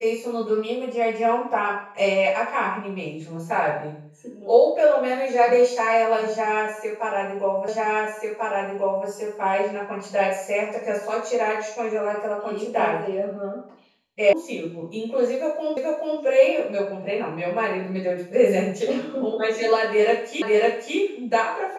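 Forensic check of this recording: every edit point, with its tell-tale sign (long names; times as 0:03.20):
0:07.68: the same again, the last 1.39 s
0:14.33: cut off before it has died away
0:15.77: the same again, the last 0.43 s
0:20.42: the same again, the last 0.55 s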